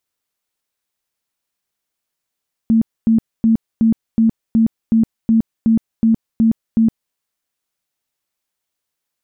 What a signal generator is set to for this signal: tone bursts 225 Hz, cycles 26, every 0.37 s, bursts 12, -9 dBFS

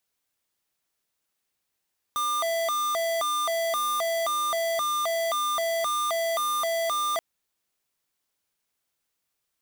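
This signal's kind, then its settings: siren hi-lo 665–1200 Hz 1.9/s square -26.5 dBFS 5.03 s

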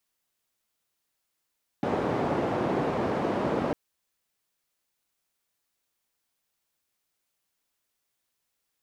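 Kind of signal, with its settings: noise band 140–580 Hz, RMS -27.5 dBFS 1.90 s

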